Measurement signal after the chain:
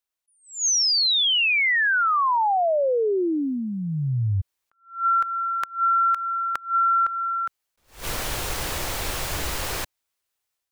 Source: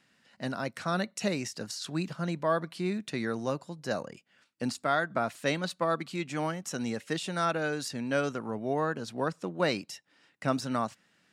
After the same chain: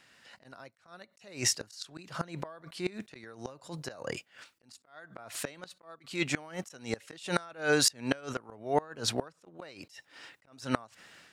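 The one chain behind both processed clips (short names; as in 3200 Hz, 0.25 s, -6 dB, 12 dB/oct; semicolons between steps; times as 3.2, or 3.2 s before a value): AGC gain up to 7.5 dB; bell 200 Hz -10 dB 1.2 oct; compressor 10:1, threshold -25 dBFS; flipped gate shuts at -19 dBFS, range -25 dB; attack slew limiter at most 170 dB/s; gain +7 dB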